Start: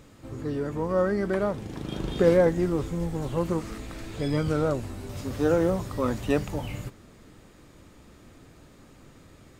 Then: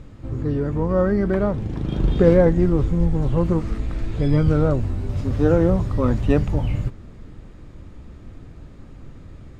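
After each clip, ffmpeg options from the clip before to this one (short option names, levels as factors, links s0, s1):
-af "aemphasis=mode=reproduction:type=bsi,volume=1.33"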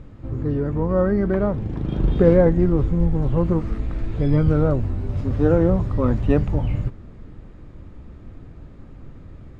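-af "highshelf=f=3800:g=-11"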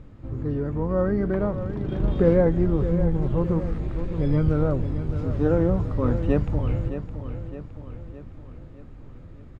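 -af "aecho=1:1:614|1228|1842|2456|3070|3684:0.299|0.152|0.0776|0.0396|0.0202|0.0103,volume=0.631"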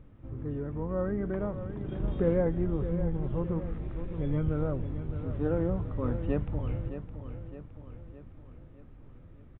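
-af "aresample=8000,aresample=44100,volume=0.398"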